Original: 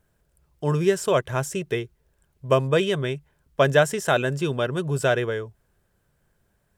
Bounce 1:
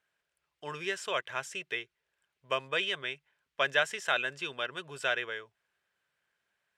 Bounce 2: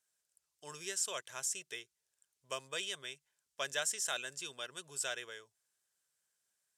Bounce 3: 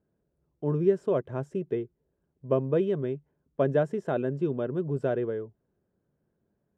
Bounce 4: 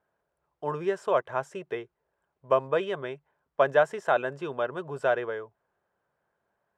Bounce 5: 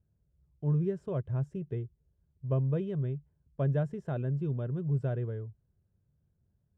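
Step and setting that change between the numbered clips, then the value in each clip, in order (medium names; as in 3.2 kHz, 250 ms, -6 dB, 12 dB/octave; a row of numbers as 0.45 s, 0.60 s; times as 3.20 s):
band-pass filter, frequency: 2.5 kHz, 7.1 kHz, 280 Hz, 880 Hz, 100 Hz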